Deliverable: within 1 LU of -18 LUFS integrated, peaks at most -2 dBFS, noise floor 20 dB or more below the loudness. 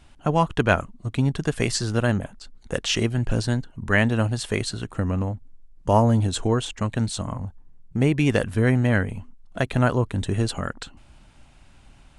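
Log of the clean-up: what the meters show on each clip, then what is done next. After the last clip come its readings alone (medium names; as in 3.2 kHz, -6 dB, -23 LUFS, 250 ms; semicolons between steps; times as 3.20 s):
loudness -24.0 LUFS; peak level -3.0 dBFS; loudness target -18.0 LUFS
-> trim +6 dB; peak limiter -2 dBFS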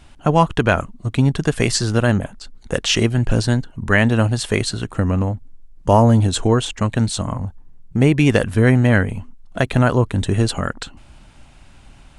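loudness -18.0 LUFS; peak level -2.0 dBFS; noise floor -46 dBFS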